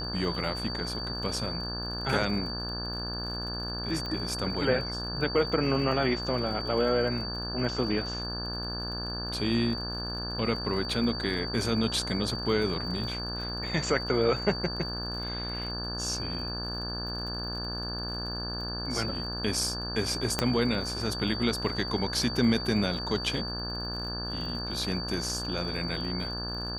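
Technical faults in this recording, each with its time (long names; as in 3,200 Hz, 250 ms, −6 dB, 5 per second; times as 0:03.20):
mains buzz 60 Hz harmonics 29 −37 dBFS
surface crackle 49 per second −39 dBFS
whistle 4,600 Hz −35 dBFS
0:04.06: click −22 dBFS
0:20.39: click −10 dBFS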